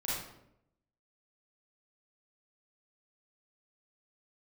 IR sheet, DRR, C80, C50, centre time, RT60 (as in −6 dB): −8.5 dB, 3.5 dB, −2.0 dB, 70 ms, 0.80 s